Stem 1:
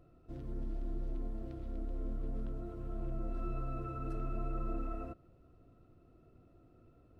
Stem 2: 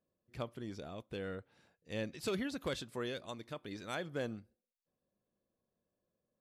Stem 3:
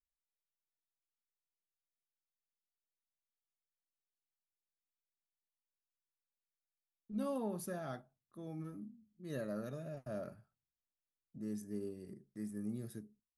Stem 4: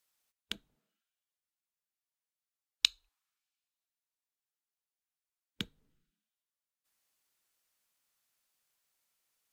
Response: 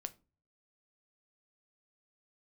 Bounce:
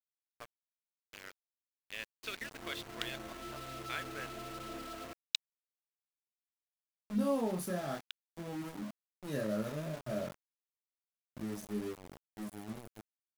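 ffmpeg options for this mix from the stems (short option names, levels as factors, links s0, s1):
-filter_complex "[0:a]highpass=68,asplit=2[s0][s1];[s1]highpass=f=720:p=1,volume=12.6,asoftclip=type=tanh:threshold=0.0355[s2];[s0][s2]amix=inputs=2:normalize=0,lowpass=f=1900:p=1,volume=0.501,volume=0.501,afade=t=in:st=2.21:d=0.46:silence=0.298538[s3];[1:a]highpass=f=1000:p=1,afwtdn=0.00316,equalizer=f=2300:t=o:w=2.2:g=14.5,volume=0.398[s4];[2:a]dynaudnorm=f=570:g=7:m=3.55,flanger=delay=22.5:depth=5.3:speed=0.58,volume=0.708,asplit=2[s5][s6];[3:a]highpass=1100,alimiter=limit=0.299:level=0:latency=1:release=172,adelay=2500,volume=0.841[s7];[s6]apad=whole_len=530149[s8];[s7][s8]sidechaincompress=threshold=0.00708:ratio=8:attack=16:release=575[s9];[s3][s4][s5][s9]amix=inputs=4:normalize=0,aeval=exprs='val(0)*gte(abs(val(0)),0.00708)':c=same"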